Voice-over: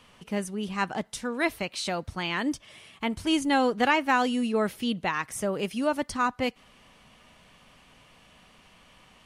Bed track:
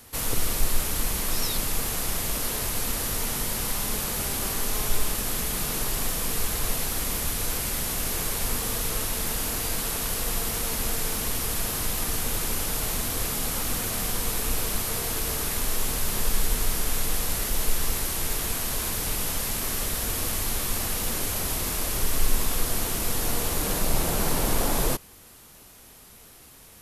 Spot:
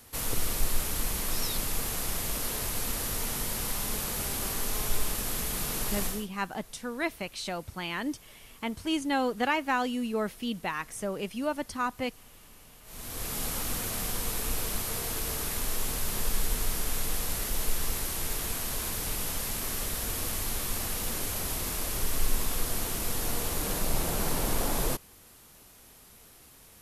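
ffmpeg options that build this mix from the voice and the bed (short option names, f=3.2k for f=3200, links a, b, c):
-filter_complex "[0:a]adelay=5600,volume=-4.5dB[a];[1:a]volume=18dB,afade=t=out:st=6.05:d=0.22:silence=0.0749894,afade=t=in:st=12.84:d=0.57:silence=0.0794328[b];[a][b]amix=inputs=2:normalize=0"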